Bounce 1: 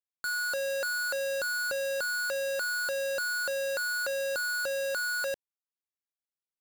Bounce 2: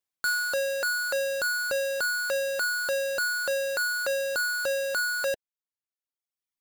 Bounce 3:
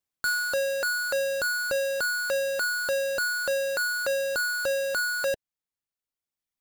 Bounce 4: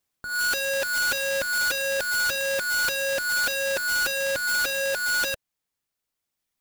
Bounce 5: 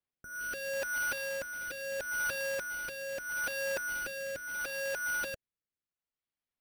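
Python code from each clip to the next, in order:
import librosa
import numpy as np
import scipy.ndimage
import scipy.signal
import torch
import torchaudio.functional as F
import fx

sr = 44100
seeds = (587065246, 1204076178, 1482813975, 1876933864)

y1 = fx.dereverb_blind(x, sr, rt60_s=1.2)
y1 = fx.rider(y1, sr, range_db=10, speed_s=0.5)
y1 = y1 * 10.0 ** (5.5 / 20.0)
y2 = fx.low_shelf(y1, sr, hz=250.0, db=7.5)
y3 = (np.mod(10.0 ** (30.0 / 20.0) * y2 + 1.0, 2.0) - 1.0) / 10.0 ** (30.0 / 20.0)
y3 = y3 * 10.0 ** (8.0 / 20.0)
y4 = fx.rotary(y3, sr, hz=0.75)
y4 = np.repeat(scipy.signal.resample_poly(y4, 1, 6), 6)[:len(y4)]
y4 = y4 * 10.0 ** (-7.0 / 20.0)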